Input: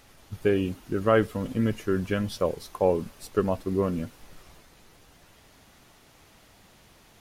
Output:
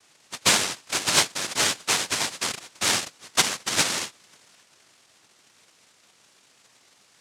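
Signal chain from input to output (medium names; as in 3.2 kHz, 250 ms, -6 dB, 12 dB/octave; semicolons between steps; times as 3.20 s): elliptic band-stop 460–4100 Hz; noise-vocoded speech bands 1; Chebyshev shaper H 7 -33 dB, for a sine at -7 dBFS; trim +3.5 dB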